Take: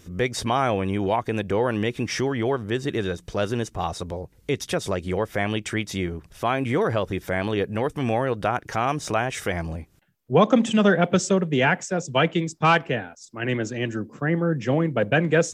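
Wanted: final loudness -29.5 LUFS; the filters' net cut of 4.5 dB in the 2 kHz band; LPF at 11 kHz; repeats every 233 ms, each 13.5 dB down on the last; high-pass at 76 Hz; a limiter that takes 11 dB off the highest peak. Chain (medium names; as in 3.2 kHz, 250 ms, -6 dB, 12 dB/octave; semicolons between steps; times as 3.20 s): high-pass 76 Hz; low-pass 11 kHz; peaking EQ 2 kHz -6 dB; peak limiter -16.5 dBFS; feedback delay 233 ms, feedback 21%, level -13.5 dB; trim -1.5 dB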